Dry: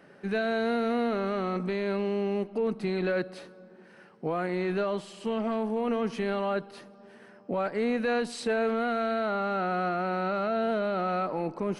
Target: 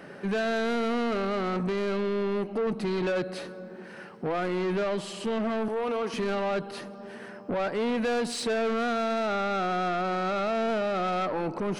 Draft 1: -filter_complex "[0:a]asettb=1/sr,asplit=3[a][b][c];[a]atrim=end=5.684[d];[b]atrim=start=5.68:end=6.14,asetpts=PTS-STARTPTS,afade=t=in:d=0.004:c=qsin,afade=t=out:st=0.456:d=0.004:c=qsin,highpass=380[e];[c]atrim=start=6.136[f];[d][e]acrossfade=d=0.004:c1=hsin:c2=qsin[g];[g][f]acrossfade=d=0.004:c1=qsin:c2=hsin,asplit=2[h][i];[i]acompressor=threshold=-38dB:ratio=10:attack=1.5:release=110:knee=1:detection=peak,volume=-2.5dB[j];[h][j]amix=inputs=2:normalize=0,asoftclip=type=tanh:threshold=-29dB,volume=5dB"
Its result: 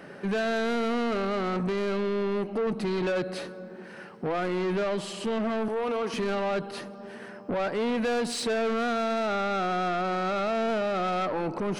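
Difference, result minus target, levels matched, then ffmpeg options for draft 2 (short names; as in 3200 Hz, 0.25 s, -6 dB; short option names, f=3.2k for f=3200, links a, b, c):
compressor: peak gain reduction -6.5 dB
-filter_complex "[0:a]asettb=1/sr,asplit=3[a][b][c];[a]atrim=end=5.684[d];[b]atrim=start=5.68:end=6.14,asetpts=PTS-STARTPTS,afade=t=in:d=0.004:c=qsin,afade=t=out:st=0.456:d=0.004:c=qsin,highpass=380[e];[c]atrim=start=6.136[f];[d][e]acrossfade=d=0.004:c1=hsin:c2=qsin[g];[g][f]acrossfade=d=0.004:c1=qsin:c2=hsin,asplit=2[h][i];[i]acompressor=threshold=-45dB:ratio=10:attack=1.5:release=110:knee=1:detection=peak,volume=-2.5dB[j];[h][j]amix=inputs=2:normalize=0,asoftclip=type=tanh:threshold=-29dB,volume=5dB"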